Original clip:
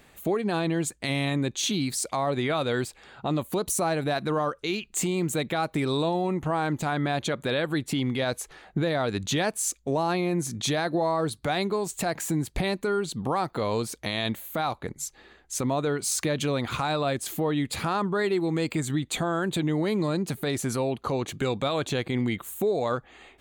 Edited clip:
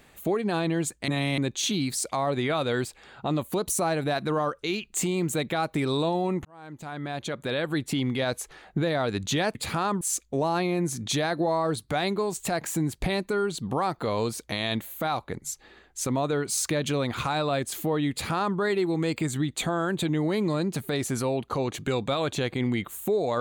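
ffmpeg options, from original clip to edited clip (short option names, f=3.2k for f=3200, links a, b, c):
-filter_complex "[0:a]asplit=6[a][b][c][d][e][f];[a]atrim=end=1.082[g];[b]atrim=start=1.078:end=1.382,asetpts=PTS-STARTPTS,areverse[h];[c]atrim=start=1.378:end=6.45,asetpts=PTS-STARTPTS,afade=t=out:st=5.068:d=0.004:c=hsin[i];[d]atrim=start=6.45:end=9.552,asetpts=PTS-STARTPTS,afade=t=in:d=1.36[j];[e]atrim=start=17.648:end=18.112[k];[f]atrim=start=9.548[l];[g][h]acrossfade=d=0.004:c1=hsin:c2=hsin[m];[i][j]concat=n=2:v=0:a=1[n];[m][n]acrossfade=d=0.004:c1=hsin:c2=hsin[o];[o][k]acrossfade=d=0.004:c1=hsin:c2=hsin[p];[p][l]acrossfade=d=0.004:c1=hsin:c2=hsin"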